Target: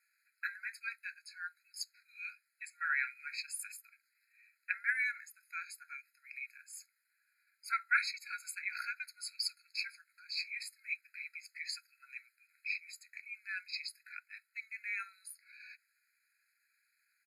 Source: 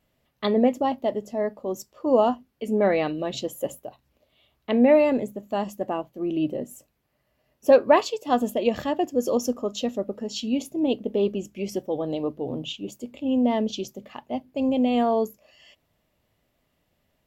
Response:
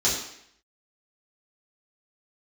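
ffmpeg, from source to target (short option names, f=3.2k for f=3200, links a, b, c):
-af "asetrate=37084,aresample=44100,atempo=1.18921,afftfilt=real='re*eq(mod(floor(b*sr/1024/1300),2),1)':imag='im*eq(mod(floor(b*sr/1024/1300),2),1)':win_size=1024:overlap=0.75,volume=2dB"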